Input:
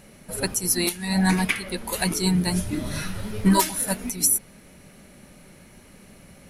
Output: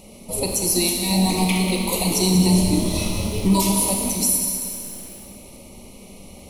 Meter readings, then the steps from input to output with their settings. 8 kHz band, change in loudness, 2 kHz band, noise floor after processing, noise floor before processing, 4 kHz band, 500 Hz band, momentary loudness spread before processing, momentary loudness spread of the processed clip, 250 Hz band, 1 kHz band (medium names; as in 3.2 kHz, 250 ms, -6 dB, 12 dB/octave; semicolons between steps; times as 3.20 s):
+4.5 dB, +4.0 dB, -2.5 dB, -43 dBFS, -50 dBFS, +5.5 dB, +5.5 dB, 9 LU, 12 LU, +4.5 dB, +1.5 dB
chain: peaking EQ 140 Hz -9.5 dB 0.36 oct; peak limiter -16 dBFS, peak gain reduction 9 dB; Butterworth band-stop 1.6 kHz, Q 1.2; Schroeder reverb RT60 2.4 s, combs from 27 ms, DRR 1.5 dB; bit-crushed delay 190 ms, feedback 35%, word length 7-bit, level -9 dB; trim +5.5 dB